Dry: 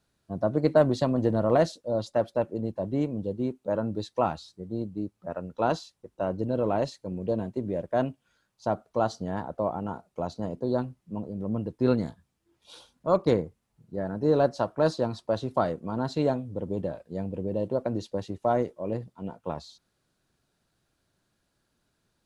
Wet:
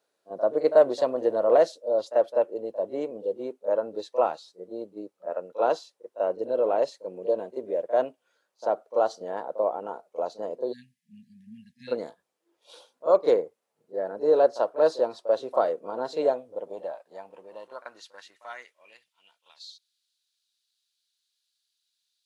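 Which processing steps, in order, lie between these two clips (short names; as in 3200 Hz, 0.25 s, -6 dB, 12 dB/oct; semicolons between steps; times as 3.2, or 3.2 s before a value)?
spectral delete 10.72–11.92, 250–1600 Hz; pre-echo 38 ms -14.5 dB; high-pass sweep 490 Hz -> 3800 Hz, 16.23–19.69; gain -2.5 dB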